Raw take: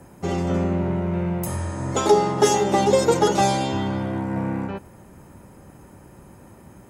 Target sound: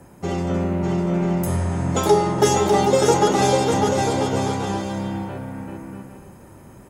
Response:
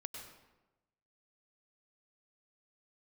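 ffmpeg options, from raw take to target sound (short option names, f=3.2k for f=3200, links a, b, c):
-af "aecho=1:1:600|990|1244|1408|1515:0.631|0.398|0.251|0.158|0.1"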